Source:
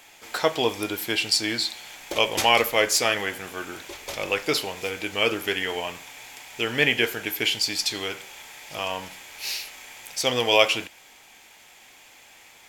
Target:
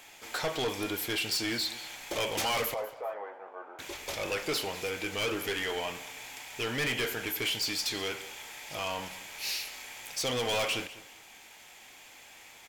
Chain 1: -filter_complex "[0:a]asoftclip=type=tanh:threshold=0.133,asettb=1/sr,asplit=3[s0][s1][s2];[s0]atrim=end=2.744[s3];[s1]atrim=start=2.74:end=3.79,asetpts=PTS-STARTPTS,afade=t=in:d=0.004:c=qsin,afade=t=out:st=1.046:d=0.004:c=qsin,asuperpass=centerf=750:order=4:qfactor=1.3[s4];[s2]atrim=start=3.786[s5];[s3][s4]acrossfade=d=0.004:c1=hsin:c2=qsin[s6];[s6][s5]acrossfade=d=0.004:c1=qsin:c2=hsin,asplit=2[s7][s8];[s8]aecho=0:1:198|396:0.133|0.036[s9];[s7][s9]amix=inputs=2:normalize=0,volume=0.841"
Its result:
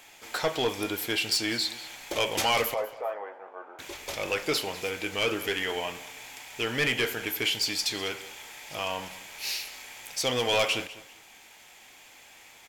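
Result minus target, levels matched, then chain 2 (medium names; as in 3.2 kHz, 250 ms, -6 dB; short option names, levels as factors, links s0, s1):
saturation: distortion -5 dB
-filter_complex "[0:a]asoftclip=type=tanh:threshold=0.0531,asettb=1/sr,asplit=3[s0][s1][s2];[s0]atrim=end=2.744[s3];[s1]atrim=start=2.74:end=3.79,asetpts=PTS-STARTPTS,afade=t=in:d=0.004:c=qsin,afade=t=out:st=1.046:d=0.004:c=qsin,asuperpass=centerf=750:order=4:qfactor=1.3[s4];[s2]atrim=start=3.786[s5];[s3][s4]acrossfade=d=0.004:c1=hsin:c2=qsin[s6];[s6][s5]acrossfade=d=0.004:c1=qsin:c2=hsin,asplit=2[s7][s8];[s8]aecho=0:1:198|396:0.133|0.036[s9];[s7][s9]amix=inputs=2:normalize=0,volume=0.841"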